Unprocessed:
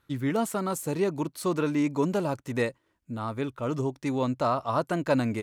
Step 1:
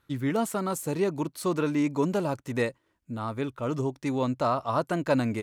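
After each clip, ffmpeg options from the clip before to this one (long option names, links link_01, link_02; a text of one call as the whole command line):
ffmpeg -i in.wav -af anull out.wav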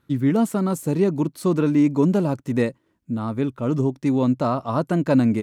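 ffmpeg -i in.wav -af "equalizer=frequency=200:width=0.64:gain=11" out.wav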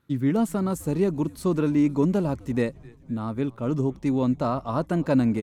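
ffmpeg -i in.wav -filter_complex "[0:a]asplit=6[link_01][link_02][link_03][link_04][link_05][link_06];[link_02]adelay=257,afreqshift=-110,volume=-23.5dB[link_07];[link_03]adelay=514,afreqshift=-220,volume=-27.4dB[link_08];[link_04]adelay=771,afreqshift=-330,volume=-31.3dB[link_09];[link_05]adelay=1028,afreqshift=-440,volume=-35.1dB[link_10];[link_06]adelay=1285,afreqshift=-550,volume=-39dB[link_11];[link_01][link_07][link_08][link_09][link_10][link_11]amix=inputs=6:normalize=0,volume=-3.5dB" out.wav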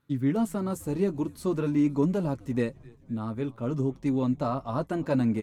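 ffmpeg -i in.wav -af "flanger=delay=6.9:depth=2.6:regen=-41:speed=0.46:shape=sinusoidal" out.wav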